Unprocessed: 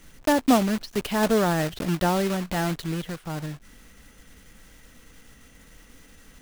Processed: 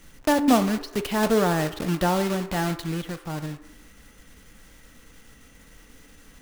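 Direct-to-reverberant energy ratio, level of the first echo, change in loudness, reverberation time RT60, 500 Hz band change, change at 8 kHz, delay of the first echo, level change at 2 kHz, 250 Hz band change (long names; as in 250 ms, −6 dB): 9.5 dB, no echo audible, +0.5 dB, 0.95 s, +0.5 dB, 0.0 dB, no echo audible, 0.0 dB, +0.5 dB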